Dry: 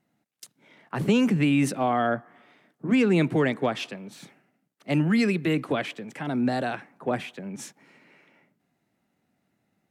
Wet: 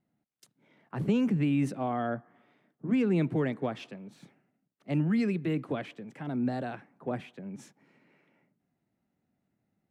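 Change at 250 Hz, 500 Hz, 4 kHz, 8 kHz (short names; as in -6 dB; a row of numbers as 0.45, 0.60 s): -5.0 dB, -7.0 dB, -12.5 dB, under -10 dB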